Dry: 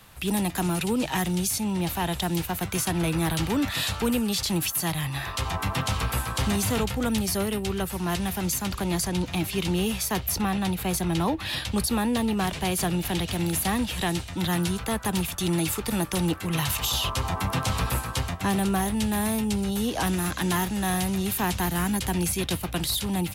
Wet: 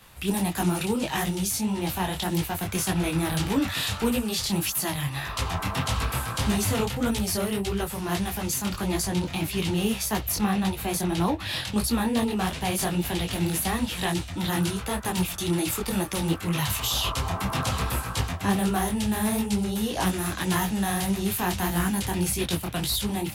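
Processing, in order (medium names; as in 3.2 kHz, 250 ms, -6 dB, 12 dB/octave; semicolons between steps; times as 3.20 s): detune thickener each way 58 cents; trim +3.5 dB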